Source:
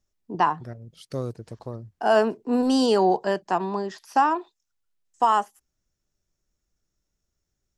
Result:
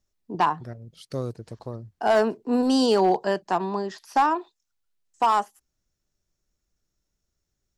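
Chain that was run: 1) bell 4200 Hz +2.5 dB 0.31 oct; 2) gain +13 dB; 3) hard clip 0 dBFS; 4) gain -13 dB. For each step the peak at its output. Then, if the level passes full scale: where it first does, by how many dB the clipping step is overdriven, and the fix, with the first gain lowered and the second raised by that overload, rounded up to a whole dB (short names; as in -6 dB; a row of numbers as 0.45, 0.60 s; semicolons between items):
-8.0, +5.0, 0.0, -13.0 dBFS; step 2, 5.0 dB; step 2 +8 dB, step 4 -8 dB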